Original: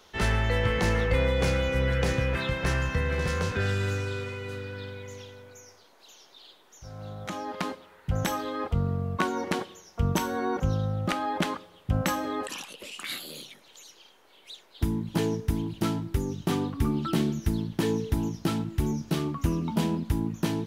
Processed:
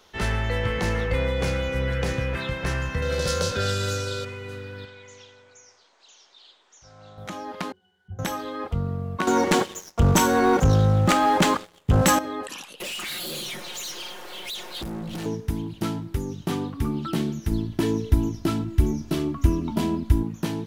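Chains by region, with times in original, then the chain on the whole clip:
3.02–4.25 s: resonant high shelf 3 kHz +10 dB, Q 1.5 + small resonant body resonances 550/1400 Hz, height 13 dB
4.85–7.18 s: steep low-pass 8.4 kHz 72 dB/octave + bass shelf 460 Hz -11.5 dB
7.72–8.19 s: zero-crossing glitches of -30 dBFS + pitch-class resonator F#, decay 0.28 s
9.27–12.19 s: peaking EQ 7.3 kHz +8 dB 0.41 oct + waveshaping leveller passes 3
12.80–15.26 s: comb 5.6 ms, depth 85% + compression 5:1, threshold -40 dBFS + waveshaping leveller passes 5
17.51–20.23 s: bass shelf 180 Hz +8.5 dB + comb 3 ms, depth 54%
whole clip: none

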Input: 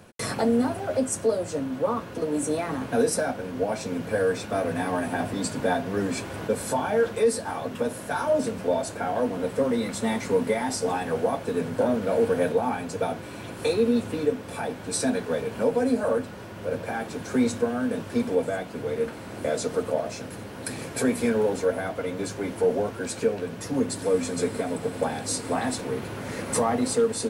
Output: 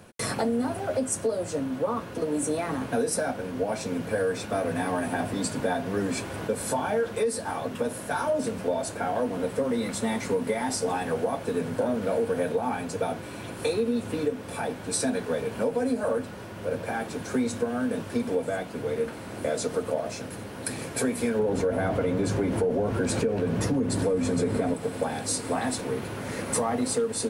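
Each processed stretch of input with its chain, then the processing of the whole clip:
21.39–24.74 s: tilt EQ -2 dB/octave + level flattener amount 50%
whole clip: peaking EQ 9.5 kHz +3.5 dB 0.24 oct; compression, threshold -22 dBFS

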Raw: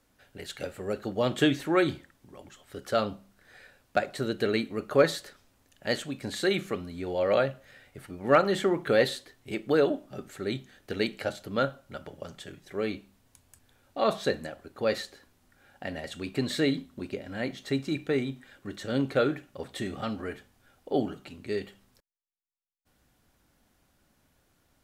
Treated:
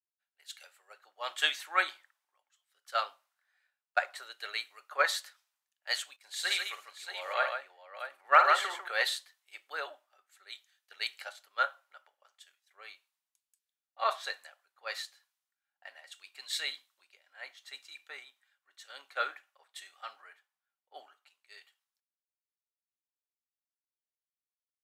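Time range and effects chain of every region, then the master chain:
6.16–8.88 s: gate -48 dBFS, range -13 dB + multi-tap echo 53/148/632 ms -8/-4.5/-5 dB
whole clip: high-pass 870 Hz 24 dB/octave; three bands expanded up and down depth 100%; trim -4.5 dB

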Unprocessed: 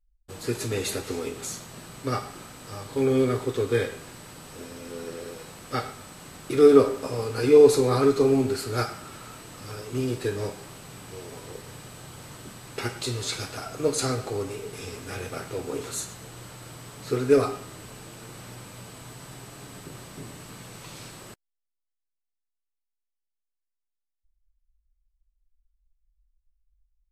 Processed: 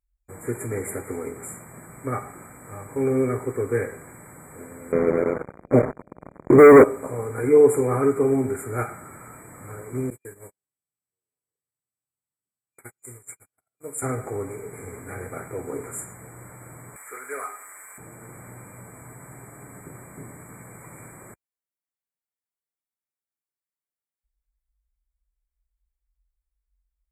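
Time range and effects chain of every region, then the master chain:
4.92–6.84 s: elliptic low-pass 630 Hz + peaking EQ 87 Hz -13.5 dB 0.66 oct + waveshaping leveller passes 5
10.10–14.02 s: gate -31 dBFS, range -44 dB + pre-emphasis filter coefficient 0.8
16.96–17.98 s: high-pass 1.4 kHz + upward compressor, threshold -40 dBFS + waveshaping leveller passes 1
whole clip: high-pass 46 Hz; FFT band-reject 2.4–7 kHz

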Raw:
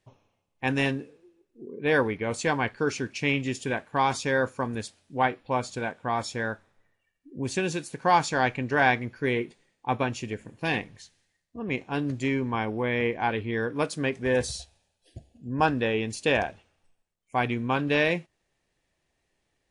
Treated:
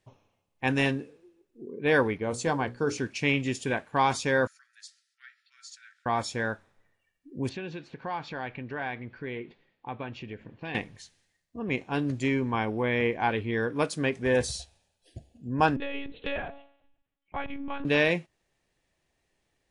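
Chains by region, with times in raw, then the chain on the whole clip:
2.18–2.98 s: peaking EQ 2.3 kHz -8.5 dB 1.3 oct + hum notches 60/120/180/240/300/360/420/480/540 Hz
4.47–6.06 s: dynamic bell 6.6 kHz, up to +4 dB, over -52 dBFS, Q 1.7 + compression 2.5:1, threshold -40 dBFS + rippled Chebyshev high-pass 1.3 kHz, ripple 9 dB
7.49–10.75 s: low-pass 3.8 kHz 24 dB/octave + compression 2:1, threshold -40 dBFS
15.76–17.85 s: de-hum 89.38 Hz, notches 15 + monotone LPC vocoder at 8 kHz 280 Hz + compression 1.5:1, threshold -41 dBFS
whole clip: none

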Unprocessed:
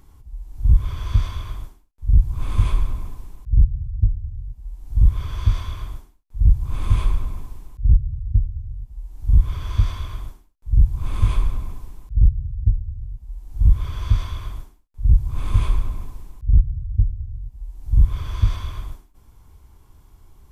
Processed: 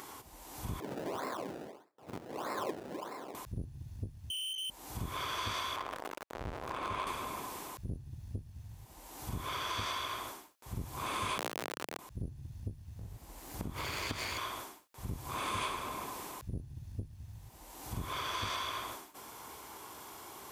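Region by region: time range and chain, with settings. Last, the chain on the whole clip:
0.80–3.35 s: high-pass 480 Hz + decimation with a swept rate 28× 1.6 Hz + tilt shelf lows +9.5 dB, about 650 Hz
4.30–4.70 s: frequency inversion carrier 3.1 kHz + valve stage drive 47 dB, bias 0.45
5.76–7.07 s: jump at every zero crossing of -29 dBFS + low-pass 1 kHz 6 dB/octave + peaking EQ 150 Hz -6.5 dB 2.3 oct
11.38–11.99 s: square wave that keeps the level + peaking EQ 140 Hz -14.5 dB 0.32 oct + compression 3:1, threshold -25 dBFS
12.99–14.38 s: comb filter that takes the minimum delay 0.43 ms + bass shelf 220 Hz +6 dB + compression, threshold -12 dBFS
whole clip: high-pass 460 Hz 12 dB/octave; compression 2.5:1, threshold -55 dBFS; trim +15 dB

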